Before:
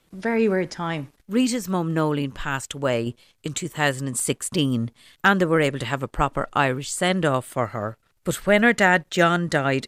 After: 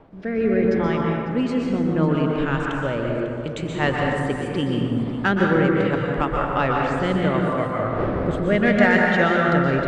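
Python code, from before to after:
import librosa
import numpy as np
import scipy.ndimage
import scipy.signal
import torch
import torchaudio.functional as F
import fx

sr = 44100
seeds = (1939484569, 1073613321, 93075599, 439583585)

p1 = fx.dmg_wind(x, sr, seeds[0], corner_hz=610.0, level_db=-38.0)
p2 = scipy.signal.sosfilt(scipy.signal.butter(2, 3000.0, 'lowpass', fs=sr, output='sos'), p1)
p3 = 10.0 ** (-13.0 / 20.0) * np.tanh(p2 / 10.0 ** (-13.0 / 20.0))
p4 = p2 + (p3 * 10.0 ** (-6.0 / 20.0))
p5 = fx.rotary(p4, sr, hz=0.75)
p6 = p5 + fx.echo_single(p5, sr, ms=548, db=-15.5, dry=0)
p7 = fx.rev_plate(p6, sr, seeds[1], rt60_s=2.1, hf_ratio=0.45, predelay_ms=110, drr_db=-1.5)
y = p7 * 10.0 ** (-3.0 / 20.0)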